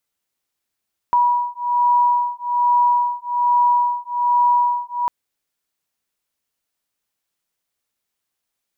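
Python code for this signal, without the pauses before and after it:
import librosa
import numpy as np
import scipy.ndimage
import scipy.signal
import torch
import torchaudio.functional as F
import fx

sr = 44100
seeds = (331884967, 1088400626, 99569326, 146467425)

y = fx.two_tone_beats(sr, length_s=3.95, hz=969.0, beat_hz=1.2, level_db=-17.5)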